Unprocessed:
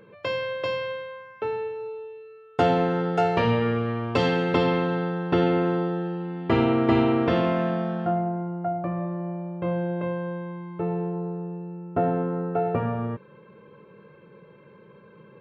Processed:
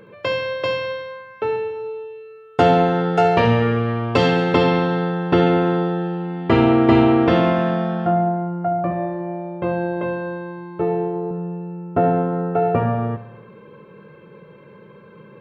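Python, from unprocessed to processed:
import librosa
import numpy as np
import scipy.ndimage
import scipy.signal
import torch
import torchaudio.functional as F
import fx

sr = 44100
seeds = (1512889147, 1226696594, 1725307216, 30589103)

y = fx.doubler(x, sr, ms=14.0, db=-4, at=(8.89, 11.31))
y = fx.echo_feedback(y, sr, ms=70, feedback_pct=60, wet_db=-13.5)
y = y * 10.0 ** (6.0 / 20.0)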